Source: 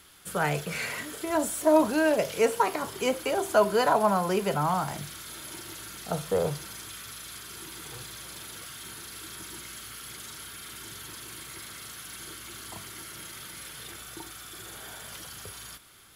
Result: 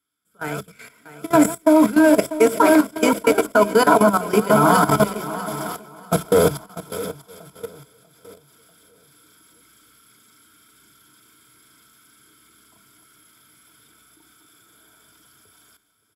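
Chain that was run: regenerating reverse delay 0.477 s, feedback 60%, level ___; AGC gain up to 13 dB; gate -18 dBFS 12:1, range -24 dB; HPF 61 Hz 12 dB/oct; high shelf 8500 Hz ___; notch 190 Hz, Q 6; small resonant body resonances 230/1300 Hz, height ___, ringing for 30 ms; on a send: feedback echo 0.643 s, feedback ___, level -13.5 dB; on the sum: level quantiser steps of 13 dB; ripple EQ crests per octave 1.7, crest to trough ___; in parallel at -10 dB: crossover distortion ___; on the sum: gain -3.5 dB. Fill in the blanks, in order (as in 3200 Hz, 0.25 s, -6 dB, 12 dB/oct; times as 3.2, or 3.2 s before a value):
-7 dB, +7.5 dB, 13 dB, 41%, 9 dB, -29.5 dBFS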